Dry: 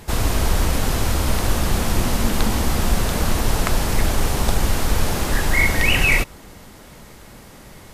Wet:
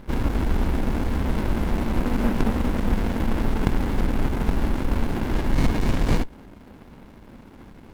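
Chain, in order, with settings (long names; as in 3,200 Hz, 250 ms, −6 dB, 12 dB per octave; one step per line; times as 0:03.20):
graphic EQ with 10 bands 125 Hz −7 dB, 250 Hz +8 dB, 1,000 Hz +5 dB, 2,000 Hz +9 dB, 4,000 Hz −11 dB, 8,000 Hz −9 dB
windowed peak hold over 65 samples
level −2.5 dB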